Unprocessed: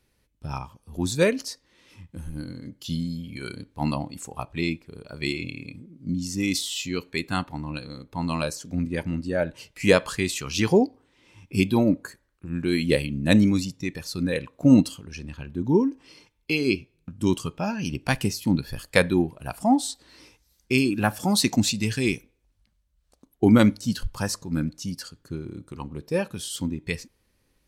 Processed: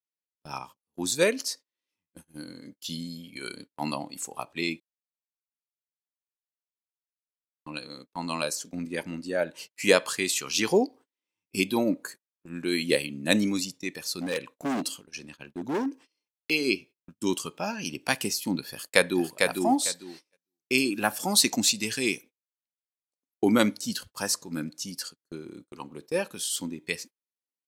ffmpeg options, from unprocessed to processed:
-filter_complex "[0:a]asettb=1/sr,asplit=3[s0][s1][s2];[s0]atrim=end=14.194[s3];[s1]atrim=start=14.19:end=15.86,asetpts=PTS-STARTPTS,afade=t=in:d=0.004:c=qsin,afade=t=out:st=1.666:d=0.004:c=qsin,asoftclip=type=hard:threshold=0.0841[s4];[s2]atrim=start=15.856[s5];[s3][s4]acrossfade=d=0.004:c1=hsin:c2=qsin[s6];[s6][s5]acrossfade=d=0.004:c1=qsin:c2=hsin,asplit=2[s7][s8];[s8]afade=t=in:st=18.7:d=0.01,afade=t=out:st=19.42:d=0.01,aecho=0:1:450|900|1350:0.668344|0.133669|0.0267338[s9];[s7][s9]amix=inputs=2:normalize=0,asplit=3[s10][s11][s12];[s10]atrim=end=4.8,asetpts=PTS-STARTPTS,afade=t=out:st=4.796:d=0.004:c=hsin[s13];[s11]atrim=start=4.8:end=7.66,asetpts=PTS-STARTPTS,volume=0[s14];[s12]atrim=start=7.66,asetpts=PTS-STARTPTS,afade=t=in:d=0.004:c=hsin[s15];[s13][s14][s15]concat=n=3:v=0:a=1,highpass=270,agate=range=0.0224:threshold=0.00631:ratio=16:detection=peak,highshelf=f=3900:g=7.5,volume=0.794"

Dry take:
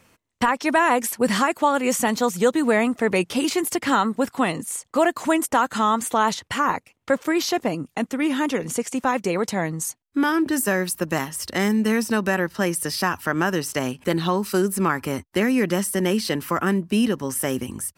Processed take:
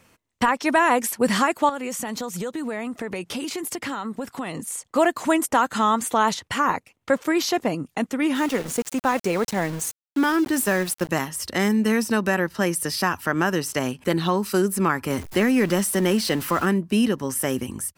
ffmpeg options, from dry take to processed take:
-filter_complex "[0:a]asettb=1/sr,asplit=3[s0][s1][s2];[s0]atrim=end=1.694[s3];[s1]atrim=start=1.69:end=4.81,asetpts=PTS-STARTPTS,afade=t=in:d=0.004:c=qsin,afade=t=out:st=3.116:d=0.004:c=qsin,acompressor=threshold=0.0501:ratio=6:attack=3.2:release=140:knee=1:detection=peak[s4];[s2]atrim=start=4.806[s5];[s3][s4]acrossfade=d=0.004:c1=hsin:c2=qsin[s6];[s6][s5]acrossfade=d=0.004:c1=qsin:c2=hsin,asettb=1/sr,asplit=3[s7][s8][s9];[s7]atrim=end=8.354[s10];[s8]atrim=start=8.35:end=11.09,asetpts=PTS-STARTPTS,afade=t=in:d=0.004:c=qsin,afade=t=out:st=2.736:d=0.004:c=qsin,aeval=exprs='val(0)*gte(abs(val(0)),0.0282)':c=same[s11];[s9]atrim=start=11.086[s12];[s10][s11]acrossfade=d=0.004:c1=hsin:c2=qsin[s13];[s13][s12]acrossfade=d=0.004:c1=qsin:c2=hsin,asettb=1/sr,asplit=3[s14][s15][s16];[s14]atrim=end=15.104[s17];[s15]atrim=start=15.1:end=16.66,asetpts=PTS-STARTPTS,afade=t=in:d=0.004:c=qsin,afade=t=out:st=1.556:d=0.004:c=qsin,aeval=exprs='val(0)+0.5*0.0251*sgn(val(0))':c=same[s18];[s16]atrim=start=16.656[s19];[s17][s18]acrossfade=d=0.004:c1=hsin:c2=qsin[s20];[s20][s19]acrossfade=d=0.004:c1=qsin:c2=hsin"

